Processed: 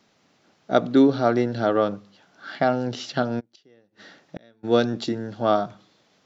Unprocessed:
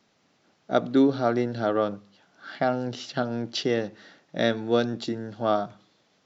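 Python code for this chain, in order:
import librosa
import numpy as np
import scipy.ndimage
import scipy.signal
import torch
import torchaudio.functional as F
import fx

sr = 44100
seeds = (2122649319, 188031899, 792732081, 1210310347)

y = fx.gate_flip(x, sr, shuts_db=-25.0, range_db=-34, at=(3.39, 4.63), fade=0.02)
y = y * 10.0 ** (3.5 / 20.0)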